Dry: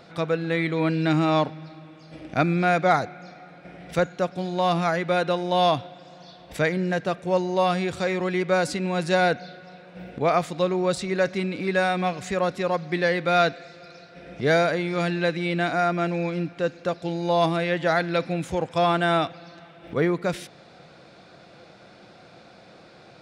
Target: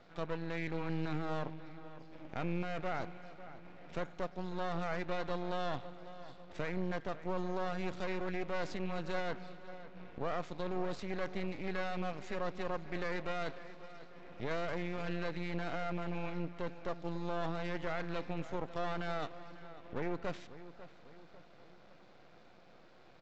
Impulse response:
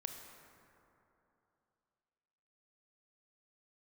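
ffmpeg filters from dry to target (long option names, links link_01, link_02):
-filter_complex "[0:a]alimiter=limit=-18dB:level=0:latency=1:release=13,lowshelf=frequency=81:gain=-10,aresample=16000,aeval=exprs='max(val(0),0)':channel_layout=same,aresample=44100,aemphasis=mode=reproduction:type=50fm,asplit=2[link_01][link_02];[link_02]adelay=547,lowpass=frequency=3600:poles=1,volume=-15dB,asplit=2[link_03][link_04];[link_04]adelay=547,lowpass=frequency=3600:poles=1,volume=0.49,asplit=2[link_05][link_06];[link_06]adelay=547,lowpass=frequency=3600:poles=1,volume=0.49,asplit=2[link_07][link_08];[link_08]adelay=547,lowpass=frequency=3600:poles=1,volume=0.49,asplit=2[link_09][link_10];[link_10]adelay=547,lowpass=frequency=3600:poles=1,volume=0.49[link_11];[link_01][link_03][link_05][link_07][link_09][link_11]amix=inputs=6:normalize=0,volume=-7.5dB"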